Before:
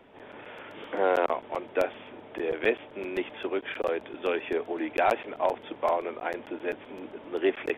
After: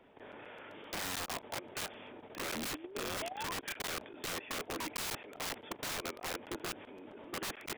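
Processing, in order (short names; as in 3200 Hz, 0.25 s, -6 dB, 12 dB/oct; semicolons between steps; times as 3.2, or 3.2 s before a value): painted sound rise, 2.54–3.55, 210–1100 Hz -37 dBFS; wrapped overs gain 27.5 dB; level quantiser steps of 12 dB; gain -2.5 dB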